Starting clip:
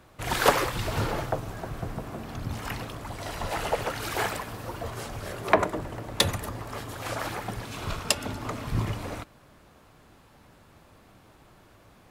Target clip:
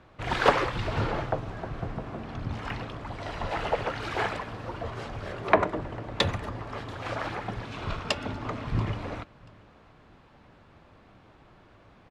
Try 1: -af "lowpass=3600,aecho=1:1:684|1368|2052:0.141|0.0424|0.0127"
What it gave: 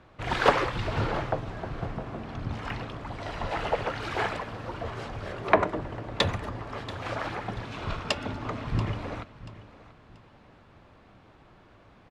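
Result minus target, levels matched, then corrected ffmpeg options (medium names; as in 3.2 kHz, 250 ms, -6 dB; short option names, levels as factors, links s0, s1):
echo-to-direct +10 dB
-af "lowpass=3600,aecho=1:1:684|1368:0.0447|0.0134"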